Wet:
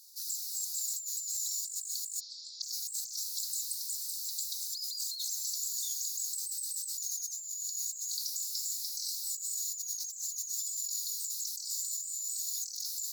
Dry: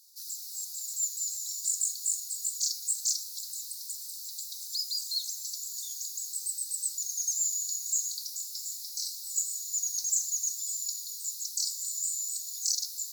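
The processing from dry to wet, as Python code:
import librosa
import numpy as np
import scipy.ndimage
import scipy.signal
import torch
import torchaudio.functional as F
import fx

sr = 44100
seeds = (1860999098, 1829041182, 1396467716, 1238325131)

y = fx.steep_lowpass(x, sr, hz=5400.0, slope=48, at=(2.19, 2.62), fade=0.02)
y = fx.over_compress(y, sr, threshold_db=-37.0, ratio=-1.0)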